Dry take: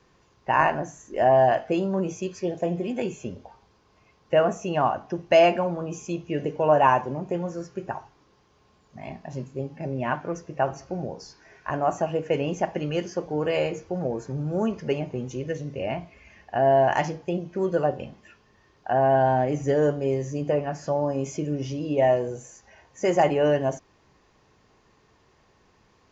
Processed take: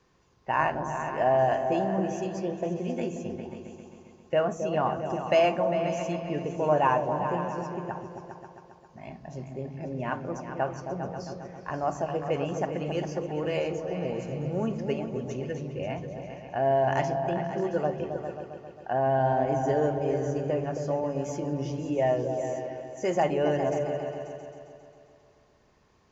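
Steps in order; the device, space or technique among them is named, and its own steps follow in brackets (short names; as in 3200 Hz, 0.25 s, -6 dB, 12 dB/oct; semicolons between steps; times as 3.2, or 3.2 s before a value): repeats that get brighter 0.134 s, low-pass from 200 Hz, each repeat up 2 oct, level -3 dB; exciter from parts (in parallel at -13 dB: HPF 2400 Hz 6 dB/oct + soft clip -37.5 dBFS, distortion -5 dB + HPF 3400 Hz); on the sum: gain -5 dB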